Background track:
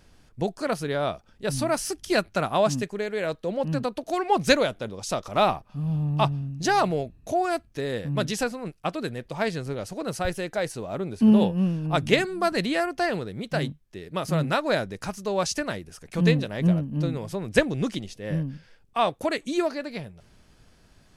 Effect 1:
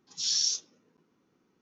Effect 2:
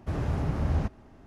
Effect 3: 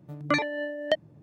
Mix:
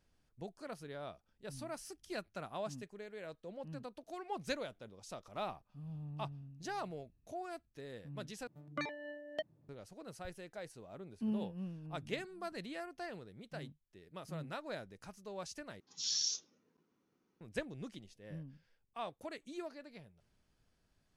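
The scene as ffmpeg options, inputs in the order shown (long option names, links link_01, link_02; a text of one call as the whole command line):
ffmpeg -i bed.wav -i cue0.wav -i cue1.wav -i cue2.wav -filter_complex "[0:a]volume=-19.5dB,asplit=3[link_01][link_02][link_03];[link_01]atrim=end=8.474[link_04];[3:a]atrim=end=1.22,asetpts=PTS-STARTPTS,volume=-15dB[link_05];[link_02]atrim=start=9.686:end=15.804[link_06];[1:a]atrim=end=1.61,asetpts=PTS-STARTPTS,volume=-8dB[link_07];[link_03]atrim=start=17.406[link_08];[link_04][link_05]acrossfade=duration=0.004:curve1=hsin:curve2=hsin[link_09];[link_09][link_06]acrossfade=duration=0.004:curve1=hsin:curve2=hsin[link_10];[link_10][link_07]acrossfade=duration=0.004:curve1=hsin:curve2=hsin[link_11];[link_11][link_08]acrossfade=duration=0.004:curve1=hsin:curve2=hsin" out.wav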